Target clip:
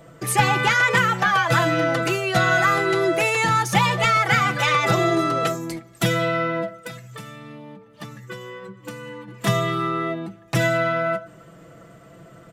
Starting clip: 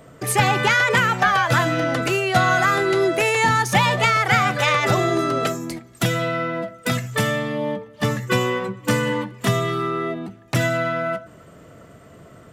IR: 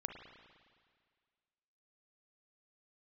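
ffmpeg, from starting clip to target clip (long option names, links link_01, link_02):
-filter_complex "[0:a]asplit=3[link_01][link_02][link_03];[link_01]afade=type=out:start_time=6.79:duration=0.02[link_04];[link_02]acompressor=threshold=-34dB:ratio=6,afade=type=in:start_time=6.79:duration=0.02,afade=type=out:start_time=9.27:duration=0.02[link_05];[link_03]afade=type=in:start_time=9.27:duration=0.02[link_06];[link_04][link_05][link_06]amix=inputs=3:normalize=0,aecho=1:1:6:0.59,volume=-2.5dB"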